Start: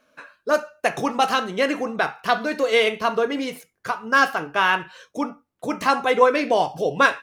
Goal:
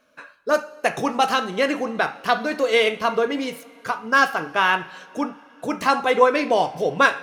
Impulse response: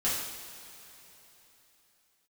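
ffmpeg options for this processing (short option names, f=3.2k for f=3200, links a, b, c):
-filter_complex "[0:a]asplit=2[a][b];[1:a]atrim=start_sample=2205,asetrate=28224,aresample=44100[c];[b][c]afir=irnorm=-1:irlink=0,volume=-29dB[d];[a][d]amix=inputs=2:normalize=0"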